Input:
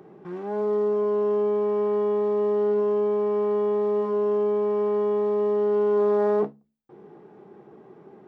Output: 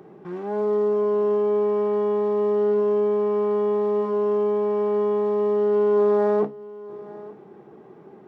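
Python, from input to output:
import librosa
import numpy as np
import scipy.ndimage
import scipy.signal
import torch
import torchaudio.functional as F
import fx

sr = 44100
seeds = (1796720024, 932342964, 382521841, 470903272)

y = x + 10.0 ** (-19.0 / 20.0) * np.pad(x, (int(882 * sr / 1000.0), 0))[:len(x)]
y = y * 10.0 ** (2.0 / 20.0)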